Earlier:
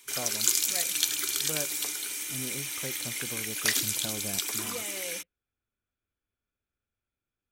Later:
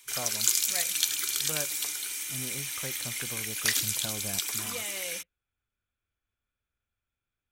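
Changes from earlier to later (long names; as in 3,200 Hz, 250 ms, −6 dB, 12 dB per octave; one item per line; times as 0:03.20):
speech +4.0 dB
master: add parametric band 320 Hz −7.5 dB 2.3 octaves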